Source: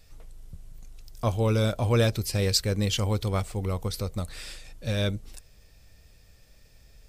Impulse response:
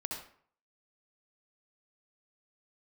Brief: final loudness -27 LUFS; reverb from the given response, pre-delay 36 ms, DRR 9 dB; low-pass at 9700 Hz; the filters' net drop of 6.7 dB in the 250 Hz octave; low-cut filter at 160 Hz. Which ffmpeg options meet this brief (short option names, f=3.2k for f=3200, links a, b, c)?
-filter_complex "[0:a]highpass=160,lowpass=9.7k,equalizer=f=250:t=o:g=-7.5,asplit=2[a][b];[1:a]atrim=start_sample=2205,adelay=36[c];[b][c]afir=irnorm=-1:irlink=0,volume=-10.5dB[d];[a][d]amix=inputs=2:normalize=0,volume=3.5dB"